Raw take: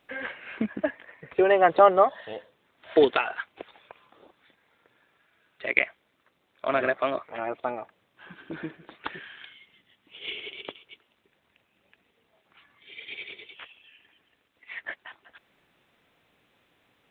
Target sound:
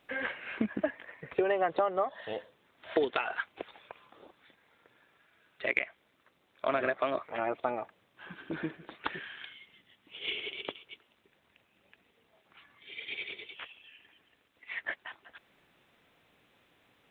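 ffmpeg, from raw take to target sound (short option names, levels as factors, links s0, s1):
-af "acompressor=threshold=0.0562:ratio=8"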